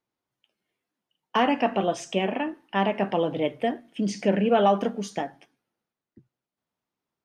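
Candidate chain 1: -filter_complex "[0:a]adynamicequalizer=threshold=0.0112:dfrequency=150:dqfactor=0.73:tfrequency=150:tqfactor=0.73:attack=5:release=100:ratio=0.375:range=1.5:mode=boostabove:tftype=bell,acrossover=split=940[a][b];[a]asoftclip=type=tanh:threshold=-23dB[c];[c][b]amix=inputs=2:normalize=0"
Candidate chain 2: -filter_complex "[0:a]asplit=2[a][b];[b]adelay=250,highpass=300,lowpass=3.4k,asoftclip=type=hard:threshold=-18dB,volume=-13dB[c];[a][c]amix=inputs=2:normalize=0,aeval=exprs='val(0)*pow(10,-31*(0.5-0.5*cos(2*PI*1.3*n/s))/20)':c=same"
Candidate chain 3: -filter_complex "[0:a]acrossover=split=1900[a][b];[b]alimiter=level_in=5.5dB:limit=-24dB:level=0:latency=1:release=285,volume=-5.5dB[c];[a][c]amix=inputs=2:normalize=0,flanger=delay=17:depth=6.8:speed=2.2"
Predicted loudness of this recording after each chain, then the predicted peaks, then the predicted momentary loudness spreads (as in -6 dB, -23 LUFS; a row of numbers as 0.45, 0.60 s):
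-28.5, -29.5, -28.5 LUFS; -13.0, -10.5, -11.5 dBFS; 7, 21, 11 LU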